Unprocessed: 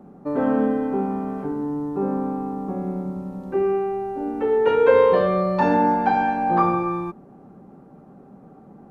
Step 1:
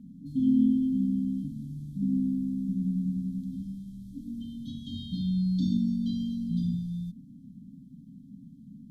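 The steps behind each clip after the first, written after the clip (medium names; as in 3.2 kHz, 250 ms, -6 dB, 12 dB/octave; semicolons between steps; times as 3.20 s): FFT band-reject 290–3100 Hz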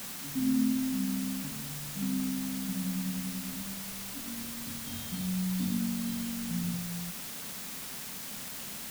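word length cut 6-bit, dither triangular; trim -5 dB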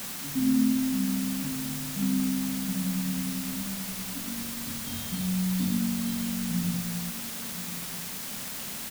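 delay 1038 ms -13.5 dB; trim +4 dB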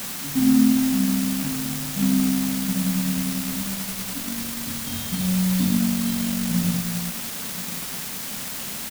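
crossover distortion -43.5 dBFS; trim +7.5 dB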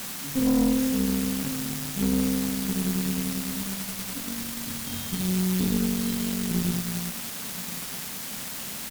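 valve stage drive 17 dB, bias 0.65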